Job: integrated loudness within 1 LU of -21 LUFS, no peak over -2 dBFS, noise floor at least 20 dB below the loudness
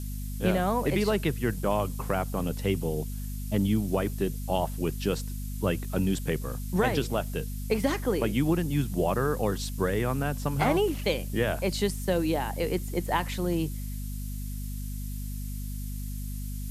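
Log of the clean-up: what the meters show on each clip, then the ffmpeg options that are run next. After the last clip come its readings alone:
hum 50 Hz; highest harmonic 250 Hz; hum level -32 dBFS; noise floor -34 dBFS; noise floor target -50 dBFS; loudness -29.5 LUFS; peak level -10.0 dBFS; loudness target -21.0 LUFS
-> -af "bandreject=f=50:t=h:w=6,bandreject=f=100:t=h:w=6,bandreject=f=150:t=h:w=6,bandreject=f=200:t=h:w=6,bandreject=f=250:t=h:w=6"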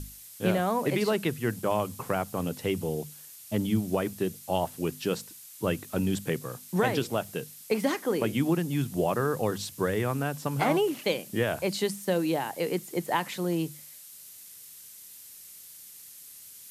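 hum not found; noise floor -48 dBFS; noise floor target -50 dBFS
-> -af "afftdn=nr=6:nf=-48"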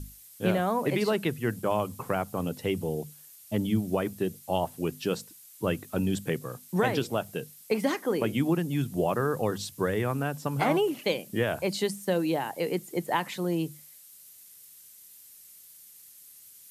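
noise floor -52 dBFS; loudness -29.5 LUFS; peak level -11.0 dBFS; loudness target -21.0 LUFS
-> -af "volume=2.66"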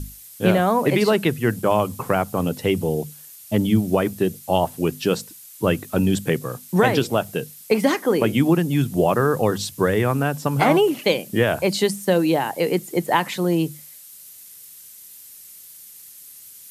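loudness -21.0 LUFS; peak level -2.5 dBFS; noise floor -44 dBFS

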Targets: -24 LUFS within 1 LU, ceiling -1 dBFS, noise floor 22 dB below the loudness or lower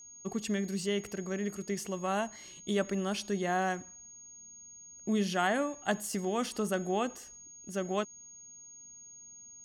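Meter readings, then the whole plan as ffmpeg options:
steady tone 6.6 kHz; tone level -49 dBFS; loudness -33.5 LUFS; peak level -17.0 dBFS; loudness target -24.0 LUFS
-> -af "bandreject=f=6600:w=30"
-af "volume=2.99"

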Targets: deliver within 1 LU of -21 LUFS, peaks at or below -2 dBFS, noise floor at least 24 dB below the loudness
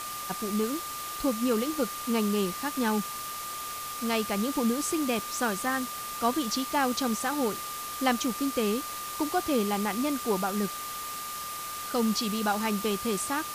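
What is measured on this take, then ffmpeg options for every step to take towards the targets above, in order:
steady tone 1.2 kHz; tone level -37 dBFS; noise floor -37 dBFS; noise floor target -54 dBFS; loudness -29.5 LUFS; peak level -12.5 dBFS; loudness target -21.0 LUFS
-> -af "bandreject=f=1200:w=30"
-af "afftdn=nr=17:nf=-37"
-af "volume=2.66"

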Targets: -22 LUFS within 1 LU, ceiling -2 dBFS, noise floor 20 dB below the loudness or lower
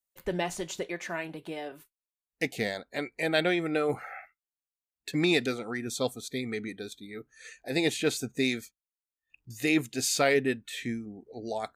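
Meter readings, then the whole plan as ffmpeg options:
loudness -30.5 LUFS; peak level -12.0 dBFS; loudness target -22.0 LUFS
-> -af "volume=2.66"

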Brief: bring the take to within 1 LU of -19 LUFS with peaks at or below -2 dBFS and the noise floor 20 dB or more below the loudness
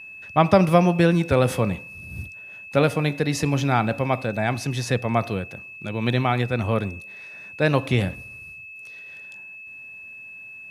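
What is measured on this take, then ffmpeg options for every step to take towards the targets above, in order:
steady tone 2.6 kHz; tone level -38 dBFS; loudness -22.0 LUFS; peak level -2.5 dBFS; loudness target -19.0 LUFS
-> -af "bandreject=f=2600:w=30"
-af "volume=1.41,alimiter=limit=0.794:level=0:latency=1"

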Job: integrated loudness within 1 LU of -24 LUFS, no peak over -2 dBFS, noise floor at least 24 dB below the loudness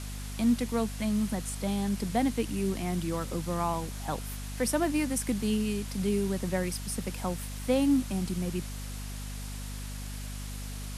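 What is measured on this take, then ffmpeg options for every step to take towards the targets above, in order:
hum 50 Hz; highest harmonic 250 Hz; hum level -36 dBFS; noise floor -38 dBFS; noise floor target -56 dBFS; loudness -31.5 LUFS; peak level -15.0 dBFS; loudness target -24.0 LUFS
-> -af "bandreject=f=50:t=h:w=4,bandreject=f=100:t=h:w=4,bandreject=f=150:t=h:w=4,bandreject=f=200:t=h:w=4,bandreject=f=250:t=h:w=4"
-af "afftdn=nr=18:nf=-38"
-af "volume=2.37"

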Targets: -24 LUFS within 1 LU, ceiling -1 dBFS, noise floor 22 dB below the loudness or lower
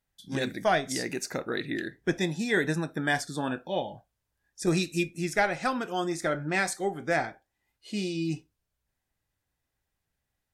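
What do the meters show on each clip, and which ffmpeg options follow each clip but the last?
loudness -30.0 LUFS; peak level -11.5 dBFS; loudness target -24.0 LUFS
-> -af "volume=2"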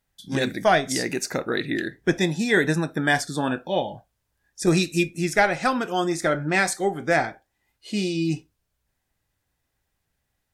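loudness -23.5 LUFS; peak level -5.5 dBFS; noise floor -77 dBFS

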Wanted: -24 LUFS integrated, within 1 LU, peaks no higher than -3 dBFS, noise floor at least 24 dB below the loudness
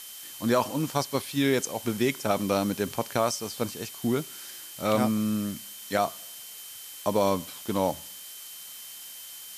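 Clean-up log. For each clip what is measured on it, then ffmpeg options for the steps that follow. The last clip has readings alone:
steady tone 3.1 kHz; tone level -49 dBFS; noise floor -43 dBFS; noise floor target -52 dBFS; loudness -28.0 LUFS; peak level -10.0 dBFS; loudness target -24.0 LUFS
-> -af "bandreject=f=3100:w=30"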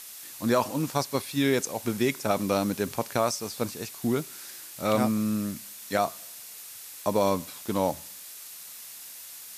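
steady tone not found; noise floor -44 dBFS; noise floor target -52 dBFS
-> -af "afftdn=nr=8:nf=-44"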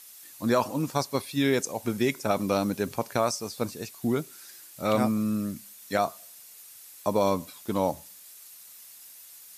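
noise floor -49 dBFS; noise floor target -52 dBFS
-> -af "afftdn=nr=6:nf=-49"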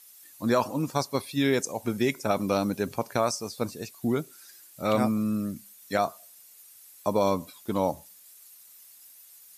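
noise floor -53 dBFS; loudness -28.5 LUFS; peak level -10.5 dBFS; loudness target -24.0 LUFS
-> -af "volume=1.68"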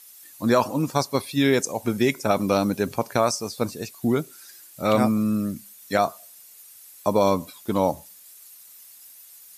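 loudness -24.0 LUFS; peak level -6.0 dBFS; noise floor -48 dBFS

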